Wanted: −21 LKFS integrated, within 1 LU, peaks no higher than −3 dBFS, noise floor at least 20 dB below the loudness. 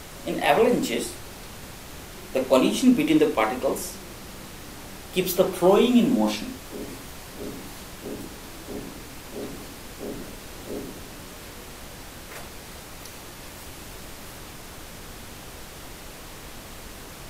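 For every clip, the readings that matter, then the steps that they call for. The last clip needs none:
background noise floor −42 dBFS; target noise floor −44 dBFS; integrated loudness −24.0 LKFS; sample peak −4.0 dBFS; target loudness −21.0 LKFS
→ noise reduction from a noise print 6 dB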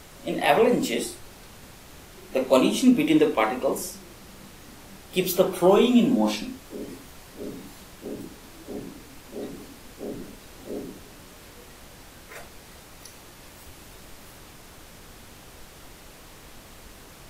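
background noise floor −48 dBFS; integrated loudness −23.0 LKFS; sample peak −4.0 dBFS; target loudness −21.0 LKFS
→ level +2 dB
brickwall limiter −3 dBFS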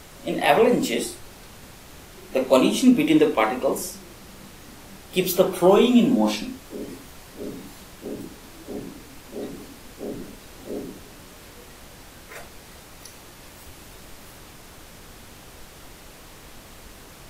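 integrated loudness −21.0 LKFS; sample peak −3.0 dBFS; background noise floor −46 dBFS

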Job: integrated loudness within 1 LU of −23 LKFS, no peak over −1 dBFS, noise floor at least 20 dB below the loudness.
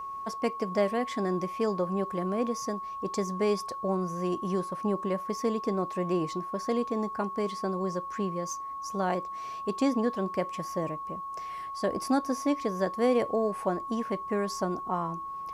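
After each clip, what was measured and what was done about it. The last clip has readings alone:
interfering tone 1,100 Hz; level of the tone −35 dBFS; integrated loudness −30.5 LKFS; sample peak −14.5 dBFS; target loudness −23.0 LKFS
→ notch filter 1,100 Hz, Q 30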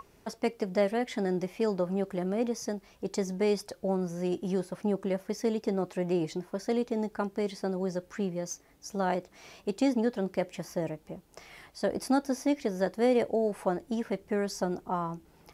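interfering tone none found; integrated loudness −31.5 LKFS; sample peak −15.0 dBFS; target loudness −23.0 LKFS
→ level +8.5 dB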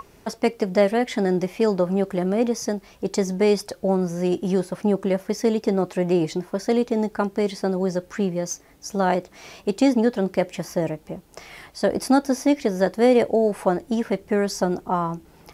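integrated loudness −23.0 LKFS; sample peak −6.5 dBFS; background noise floor −52 dBFS

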